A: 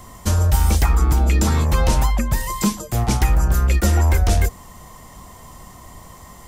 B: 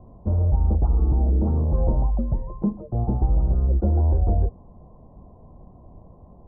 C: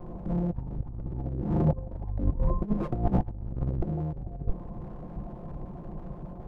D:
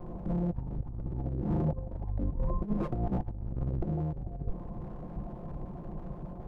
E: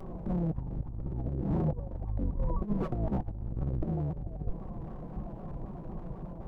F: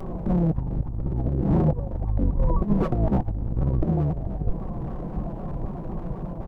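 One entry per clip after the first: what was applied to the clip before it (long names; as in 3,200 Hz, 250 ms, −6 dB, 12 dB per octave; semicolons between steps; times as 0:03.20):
inverse Chebyshev low-pass filter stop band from 2,400 Hz, stop band 60 dB; level −3.5 dB
lower of the sound and its delayed copy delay 5.7 ms; tilt shelving filter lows +3 dB, about 650 Hz; compressor whose output falls as the input rises −27 dBFS, ratio −0.5
brickwall limiter −20.5 dBFS, peak gain reduction 9 dB; level −1 dB
upward compression, threshold −48 dBFS; pitch modulation by a square or saw wave saw down 3.9 Hz, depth 160 cents
single-tap delay 1,174 ms −15.5 dB; level +9 dB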